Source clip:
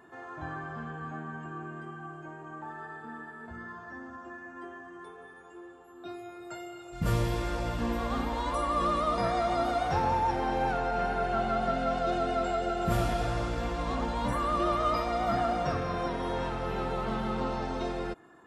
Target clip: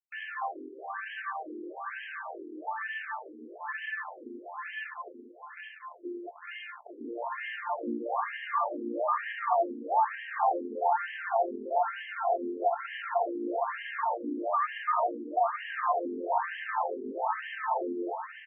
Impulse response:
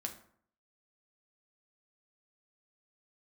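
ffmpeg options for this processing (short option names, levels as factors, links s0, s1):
-af "highpass=f=160:p=1,highshelf=f=4900:g=-8,bandreject=f=2600:w=6.1,aecho=1:1:1.1:0.58,alimiter=level_in=1.06:limit=0.0631:level=0:latency=1:release=27,volume=0.944,acrusher=bits=6:mix=0:aa=0.000001,aecho=1:1:845|1690|2535|3380|4225:0.447|0.188|0.0788|0.0331|0.0139,afftfilt=real='re*between(b*sr/1024,320*pow(2300/320,0.5+0.5*sin(2*PI*1.1*pts/sr))/1.41,320*pow(2300/320,0.5+0.5*sin(2*PI*1.1*pts/sr))*1.41)':imag='im*between(b*sr/1024,320*pow(2300/320,0.5+0.5*sin(2*PI*1.1*pts/sr))/1.41,320*pow(2300/320,0.5+0.5*sin(2*PI*1.1*pts/sr))*1.41)':win_size=1024:overlap=0.75,volume=2.51"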